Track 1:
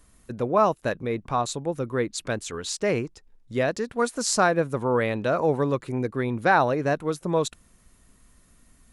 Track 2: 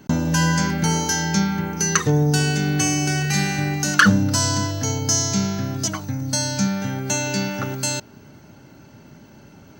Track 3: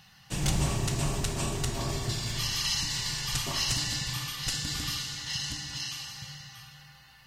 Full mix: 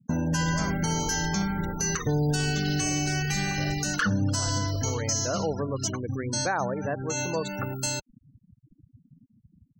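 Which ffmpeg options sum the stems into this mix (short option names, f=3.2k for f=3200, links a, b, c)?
-filter_complex "[0:a]volume=-6dB,afade=t=in:st=4.67:d=0.68:silence=0.223872,asplit=2[a][b];[1:a]volume=-4.5dB[c];[2:a]equalizer=f=3.6k:t=o:w=0.53:g=2.5,volume=-9dB[d];[b]apad=whole_len=432170[e];[c][e]sidechaincompress=threshold=-32dB:ratio=8:attack=16:release=159[f];[a][f][d]amix=inputs=3:normalize=0,afftfilt=real='re*gte(hypot(re,im),0.0251)':imag='im*gte(hypot(re,im),0.0251)':win_size=1024:overlap=0.75,asubboost=boost=3.5:cutoff=80,alimiter=limit=-17dB:level=0:latency=1:release=85"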